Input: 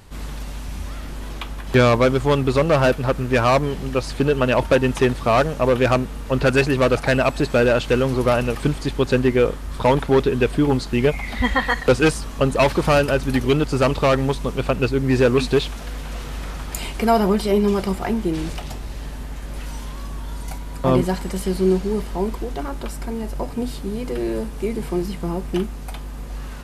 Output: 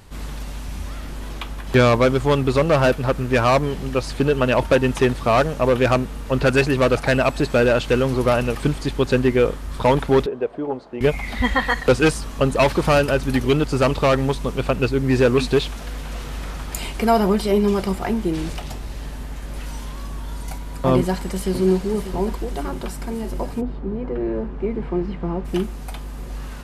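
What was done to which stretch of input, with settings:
10.26–11.01 s: band-pass filter 610 Hz, Q 1.8
20.95–21.53 s: echo throw 590 ms, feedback 75%, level -11 dB
23.60–25.44 s: low-pass 1.2 kHz -> 2.5 kHz

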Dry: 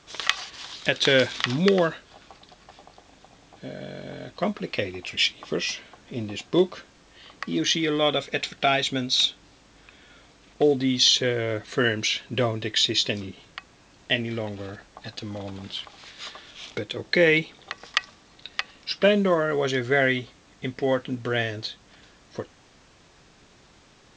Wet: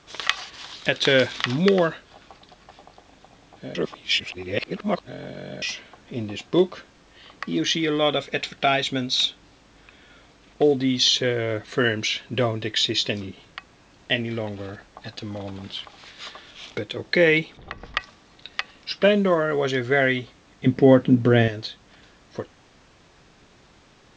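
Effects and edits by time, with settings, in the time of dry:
3.75–5.62 s: reverse
17.57–18.00 s: RIAA curve playback
20.66–21.48 s: peaking EQ 190 Hz +13.5 dB 2.7 oct
whole clip: treble shelf 6.2 kHz -7 dB; trim +1.5 dB

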